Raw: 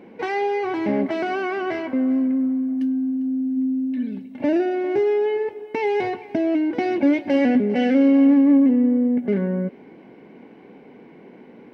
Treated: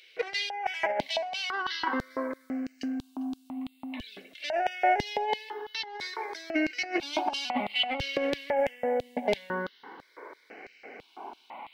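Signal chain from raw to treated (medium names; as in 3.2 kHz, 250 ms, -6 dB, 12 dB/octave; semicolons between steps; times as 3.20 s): LFO high-pass square 3 Hz 810–3700 Hz; compressor with a negative ratio -29 dBFS, ratio -0.5; stepped phaser 2 Hz 240–3500 Hz; trim +6 dB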